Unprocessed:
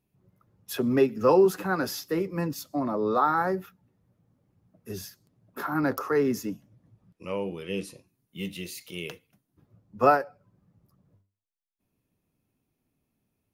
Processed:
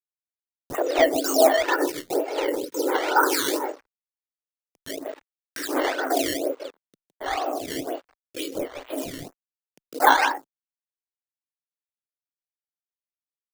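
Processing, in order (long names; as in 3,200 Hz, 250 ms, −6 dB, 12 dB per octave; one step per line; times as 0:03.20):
linear-prediction vocoder at 8 kHz whisper
frequency shifter +260 Hz
0:01.59–0:03.59: comb filter 2.2 ms, depth 75%
single-tap delay 155 ms −6 dB
dead-zone distortion −49 dBFS
high-pass filter 160 Hz 24 dB per octave
sample-and-hold swept by an LFO 12×, swing 100% 2.1 Hz
upward compression, threshold −24 dBFS
phaser with staggered stages 1.4 Hz
level +4.5 dB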